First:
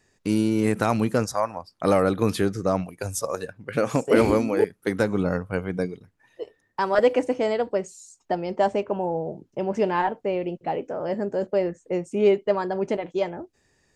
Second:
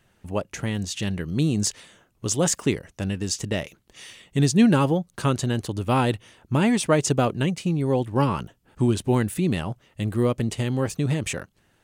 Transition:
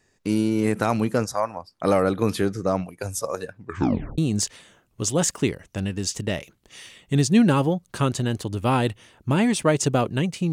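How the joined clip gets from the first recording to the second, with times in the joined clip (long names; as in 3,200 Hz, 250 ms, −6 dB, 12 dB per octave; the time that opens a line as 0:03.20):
first
0:03.60: tape stop 0.58 s
0:04.18: continue with second from 0:01.42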